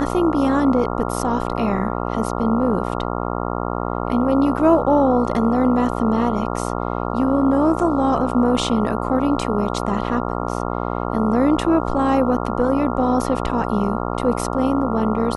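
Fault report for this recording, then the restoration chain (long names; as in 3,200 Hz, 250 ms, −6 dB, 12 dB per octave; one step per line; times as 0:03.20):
mains buzz 60 Hz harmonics 23 −24 dBFS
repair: hum removal 60 Hz, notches 23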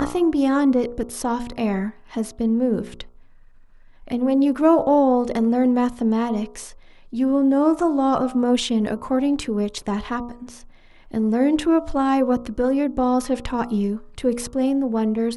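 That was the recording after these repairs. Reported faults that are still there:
none of them is left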